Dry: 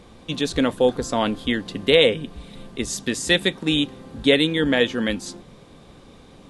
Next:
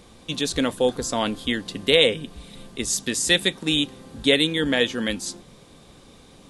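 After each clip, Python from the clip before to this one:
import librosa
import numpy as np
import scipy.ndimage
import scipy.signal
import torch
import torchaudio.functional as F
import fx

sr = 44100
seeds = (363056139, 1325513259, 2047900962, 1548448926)

y = fx.high_shelf(x, sr, hz=4200.0, db=10.5)
y = y * 10.0 ** (-3.0 / 20.0)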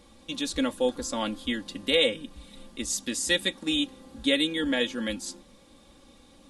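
y = x + 0.7 * np.pad(x, (int(3.6 * sr / 1000.0), 0))[:len(x)]
y = y * 10.0 ** (-7.5 / 20.0)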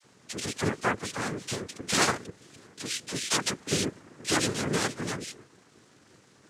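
y = fx.dispersion(x, sr, late='lows', ms=45.0, hz=750.0)
y = fx.noise_vocoder(y, sr, seeds[0], bands=3)
y = y * 10.0 ** (-2.0 / 20.0)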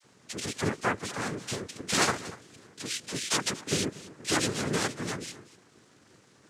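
y = x + 10.0 ** (-18.0 / 20.0) * np.pad(x, (int(238 * sr / 1000.0), 0))[:len(x)]
y = y * 10.0 ** (-1.0 / 20.0)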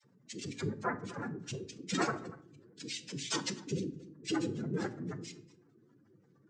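y = fx.spec_expand(x, sr, power=2.6)
y = fx.room_shoebox(y, sr, seeds[1], volume_m3=770.0, walls='furnished', distance_m=0.77)
y = y * 10.0 ** (-6.5 / 20.0)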